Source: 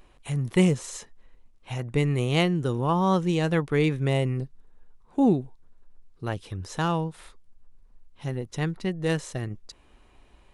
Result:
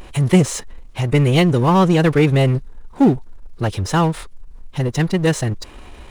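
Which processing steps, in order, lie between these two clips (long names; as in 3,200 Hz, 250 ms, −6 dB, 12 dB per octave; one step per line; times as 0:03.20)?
power curve on the samples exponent 0.7
phase-vocoder stretch with locked phases 0.58×
level +6.5 dB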